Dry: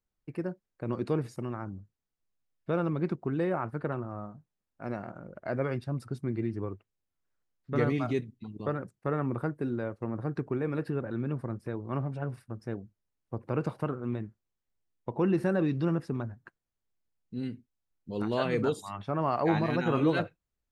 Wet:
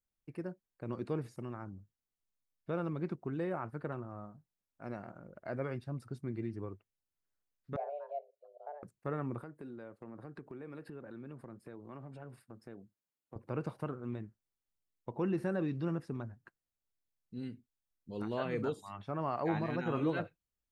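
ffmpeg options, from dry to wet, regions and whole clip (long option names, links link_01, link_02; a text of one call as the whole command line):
ffmpeg -i in.wav -filter_complex "[0:a]asettb=1/sr,asplit=3[link_01][link_02][link_03];[link_01]atrim=end=7.764[link_04];[link_02]atrim=start=7.76:end=8.83,asetpts=PTS-STARTPTS,afade=type=in:duration=0.004:curve=qsin,afade=type=out:start_time=1.066:duration=0.004:curve=qsin,bandpass=frequency=350:width_type=q:width=3.1,afreqshift=290[link_05];[link_03]atrim=start=8.826[link_06];[link_04][link_05]acrossfade=duration=0.004:curve1=hsin:curve2=qsin[link_07];[link_07][link_06]acrossfade=duration=0.004:curve1=qsin:curve2=hsin,asettb=1/sr,asplit=3[link_08][link_09][link_10];[link_08]atrim=end=9.414[link_11];[link_09]atrim=start=9.41:end=13.36,asetpts=PTS-STARTPTS,afade=type=in:duration=0.004:curve=qsin,afade=type=out:start_time=3.946:duration=0.004:curve=qsin,highpass=160,bandreject=frequency=5800:width=6.1,acompressor=threshold=-38dB:ratio=3:attack=3.2:release=140:knee=1:detection=peak[link_12];[link_10]atrim=start=13.356[link_13];[link_11][link_12]acrossfade=duration=0.004:curve1=hsin:curve2=qsin[link_14];[link_14][link_13]acrossfade=duration=0.004:curve1=qsin:curve2=hsin,acrossover=split=3000[link_15][link_16];[link_16]acompressor=threshold=-55dB:ratio=4:attack=1:release=60[link_17];[link_15][link_17]amix=inputs=2:normalize=0,highshelf=frequency=5800:gain=4.5,volume=-7dB" out.wav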